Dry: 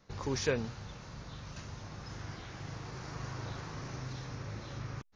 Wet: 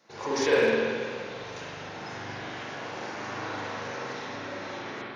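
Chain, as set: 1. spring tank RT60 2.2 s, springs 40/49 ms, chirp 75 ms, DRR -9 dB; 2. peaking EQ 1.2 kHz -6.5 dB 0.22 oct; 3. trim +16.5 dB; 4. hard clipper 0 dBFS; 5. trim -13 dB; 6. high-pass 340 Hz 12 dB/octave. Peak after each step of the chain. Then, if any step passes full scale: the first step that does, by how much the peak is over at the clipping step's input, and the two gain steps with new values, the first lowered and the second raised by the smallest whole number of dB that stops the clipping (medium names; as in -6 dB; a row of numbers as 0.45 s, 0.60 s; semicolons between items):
-13.0 dBFS, -13.0 dBFS, +3.5 dBFS, 0.0 dBFS, -13.0 dBFS, -11.0 dBFS; step 3, 3.5 dB; step 3 +12.5 dB, step 5 -9 dB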